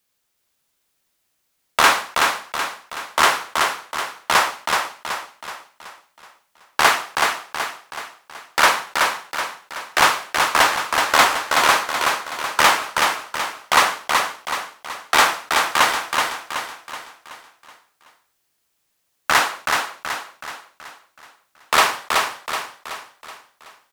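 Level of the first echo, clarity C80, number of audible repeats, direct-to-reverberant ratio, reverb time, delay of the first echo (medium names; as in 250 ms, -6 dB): -4.0 dB, no reverb, 5, no reverb, no reverb, 376 ms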